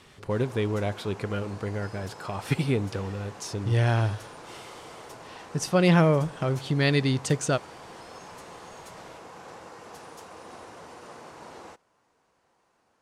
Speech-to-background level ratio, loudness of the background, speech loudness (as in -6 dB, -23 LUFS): 18.5 dB, -45.0 LUFS, -26.5 LUFS